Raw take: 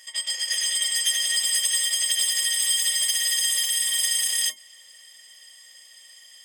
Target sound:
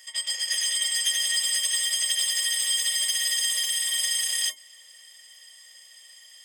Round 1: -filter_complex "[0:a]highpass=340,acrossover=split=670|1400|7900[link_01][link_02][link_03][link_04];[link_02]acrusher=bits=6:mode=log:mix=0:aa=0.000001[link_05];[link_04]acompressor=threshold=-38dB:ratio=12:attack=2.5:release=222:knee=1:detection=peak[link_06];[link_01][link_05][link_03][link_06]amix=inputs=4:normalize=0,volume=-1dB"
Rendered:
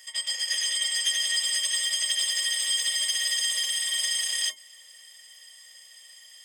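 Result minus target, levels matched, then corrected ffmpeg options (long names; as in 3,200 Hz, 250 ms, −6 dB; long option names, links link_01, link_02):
downward compressor: peak gain reduction +9 dB
-filter_complex "[0:a]highpass=340,acrossover=split=670|1400|7900[link_01][link_02][link_03][link_04];[link_02]acrusher=bits=6:mode=log:mix=0:aa=0.000001[link_05];[link_04]acompressor=threshold=-28dB:ratio=12:attack=2.5:release=222:knee=1:detection=peak[link_06];[link_01][link_05][link_03][link_06]amix=inputs=4:normalize=0,volume=-1dB"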